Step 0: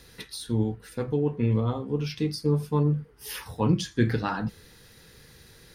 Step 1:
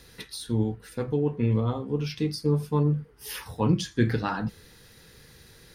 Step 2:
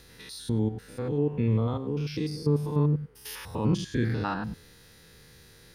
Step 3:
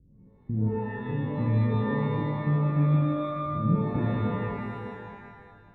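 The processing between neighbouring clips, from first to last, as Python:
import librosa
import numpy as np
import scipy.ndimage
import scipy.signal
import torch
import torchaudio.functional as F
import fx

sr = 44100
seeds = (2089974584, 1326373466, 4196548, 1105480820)

y1 = x
y2 = fx.spec_steps(y1, sr, hold_ms=100)
y3 = fx.ladder_lowpass(y2, sr, hz=280.0, resonance_pct=25)
y3 = y3 + 10.0 ** (-13.5 / 20.0) * np.pad(y3, (int(600 * sr / 1000.0), 0))[:len(y3)]
y3 = fx.rev_shimmer(y3, sr, seeds[0], rt60_s=1.3, semitones=12, shimmer_db=-2, drr_db=2.0)
y3 = y3 * 10.0 ** (3.5 / 20.0)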